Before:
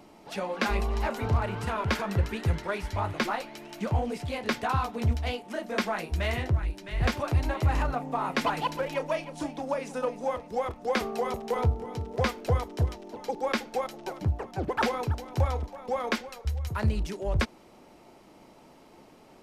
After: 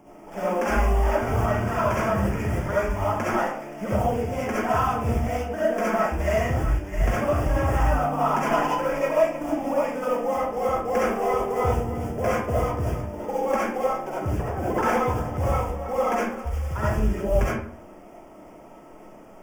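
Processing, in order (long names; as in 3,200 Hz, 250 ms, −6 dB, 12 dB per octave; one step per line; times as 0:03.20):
running median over 15 samples
in parallel at +2.5 dB: brickwall limiter −23 dBFS, peak gain reduction 8.5 dB
on the sum: log-companded quantiser 6 bits
Butterworth band-reject 4,000 Hz, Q 2.2
comb and all-pass reverb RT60 0.56 s, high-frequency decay 0.65×, pre-delay 25 ms, DRR −8.5 dB
level −7.5 dB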